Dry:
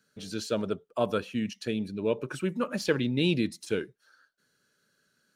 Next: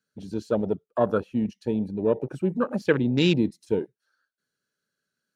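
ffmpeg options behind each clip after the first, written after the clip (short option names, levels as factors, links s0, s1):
-af "afwtdn=0.0224,volume=1.78"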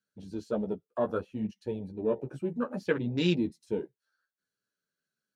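-af "flanger=delay=9.5:depth=5.6:regen=-15:speed=0.65:shape=triangular,volume=0.668"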